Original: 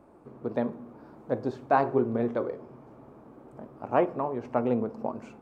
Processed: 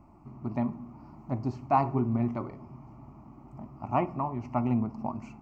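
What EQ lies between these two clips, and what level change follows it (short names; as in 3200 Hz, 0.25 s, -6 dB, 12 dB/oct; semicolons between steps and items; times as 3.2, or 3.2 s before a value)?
low shelf 160 Hz +11 dB; fixed phaser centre 2400 Hz, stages 8; +1.0 dB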